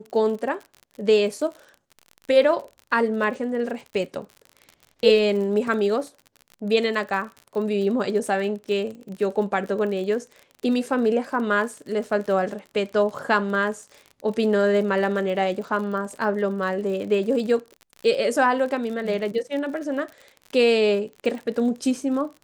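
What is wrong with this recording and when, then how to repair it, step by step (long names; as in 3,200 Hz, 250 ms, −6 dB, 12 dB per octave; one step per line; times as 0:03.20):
surface crackle 44 per second −32 dBFS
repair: click removal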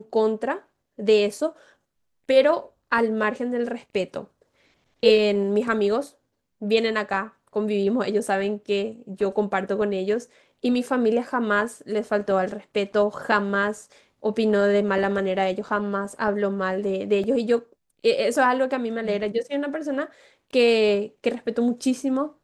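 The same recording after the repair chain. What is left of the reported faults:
none of them is left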